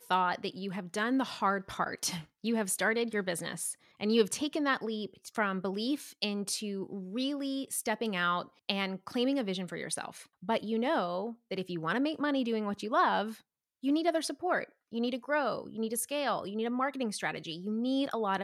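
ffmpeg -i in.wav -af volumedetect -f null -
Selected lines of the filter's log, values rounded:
mean_volume: -32.8 dB
max_volume: -12.4 dB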